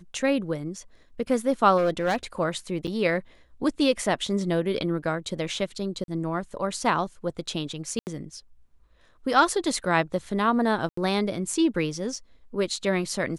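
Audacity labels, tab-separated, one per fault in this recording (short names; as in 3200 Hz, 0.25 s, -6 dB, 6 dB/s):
1.770000	2.160000	clipped -19 dBFS
2.870000	2.880000	gap 7.3 ms
6.040000	6.080000	gap 42 ms
7.990000	8.070000	gap 79 ms
10.890000	10.970000	gap 84 ms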